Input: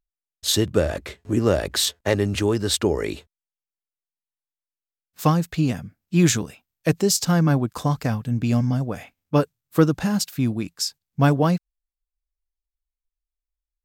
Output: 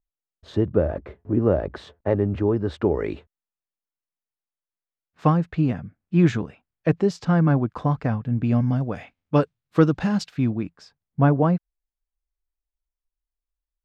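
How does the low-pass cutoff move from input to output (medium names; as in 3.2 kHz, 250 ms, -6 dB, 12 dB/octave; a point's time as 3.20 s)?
2.58 s 1 kHz
3.11 s 1.9 kHz
8.49 s 1.9 kHz
8.96 s 3.5 kHz
10.22 s 3.5 kHz
10.79 s 1.4 kHz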